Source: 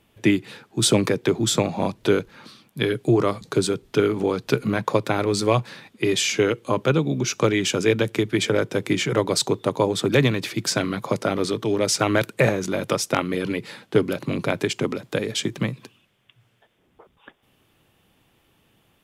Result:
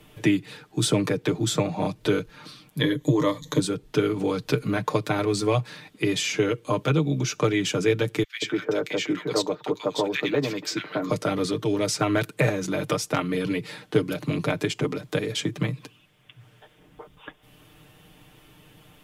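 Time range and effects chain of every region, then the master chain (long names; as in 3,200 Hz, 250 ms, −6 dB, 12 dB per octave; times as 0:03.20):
0:02.80–0:03.60: EQ curve with evenly spaced ripples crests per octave 1.1, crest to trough 13 dB + one half of a high-frequency compander encoder only
0:08.23–0:11.10: high-pass filter 290 Hz + parametric band 10,000 Hz −14.5 dB 0.54 octaves + multiband delay without the direct sound highs, lows 190 ms, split 1,500 Hz
whole clip: low-shelf EQ 82 Hz +7.5 dB; comb filter 6.6 ms, depth 68%; multiband upward and downward compressor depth 40%; level −5 dB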